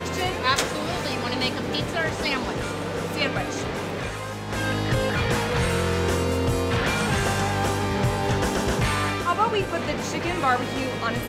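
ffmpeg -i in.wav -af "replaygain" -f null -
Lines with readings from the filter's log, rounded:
track_gain = +5.8 dB
track_peak = 0.400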